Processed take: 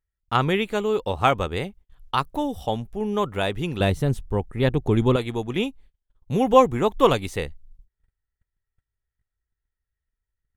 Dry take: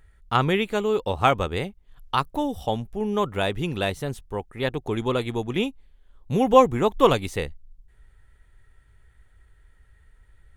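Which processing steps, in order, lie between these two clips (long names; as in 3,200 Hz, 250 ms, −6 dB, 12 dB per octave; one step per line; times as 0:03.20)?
noise gate −46 dBFS, range −29 dB
0:03.80–0:05.16: low-shelf EQ 350 Hz +11 dB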